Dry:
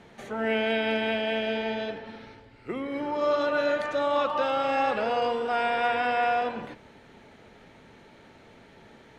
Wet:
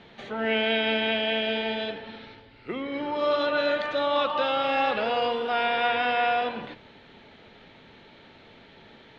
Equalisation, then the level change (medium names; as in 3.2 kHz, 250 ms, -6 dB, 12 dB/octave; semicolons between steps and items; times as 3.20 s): resonant low-pass 3.7 kHz, resonance Q 2.4; hum notches 60/120 Hz; 0.0 dB